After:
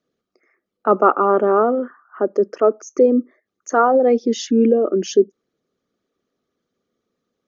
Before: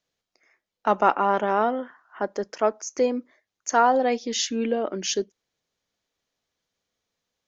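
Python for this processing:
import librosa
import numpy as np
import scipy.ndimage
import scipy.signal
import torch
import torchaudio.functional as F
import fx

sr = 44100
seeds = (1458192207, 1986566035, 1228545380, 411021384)

y = fx.envelope_sharpen(x, sr, power=1.5)
y = fx.small_body(y, sr, hz=(240.0, 360.0, 1200.0), ring_ms=20, db=16)
y = y * 10.0 ** (-4.0 / 20.0)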